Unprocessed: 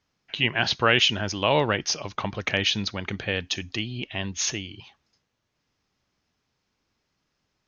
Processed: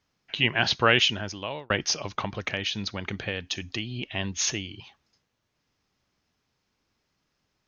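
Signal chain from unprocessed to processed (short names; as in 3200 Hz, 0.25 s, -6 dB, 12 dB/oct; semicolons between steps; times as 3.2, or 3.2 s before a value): 0.89–1.7 fade out linear; 2.23–4.07 compressor 2.5:1, threshold -28 dBFS, peak gain reduction 7 dB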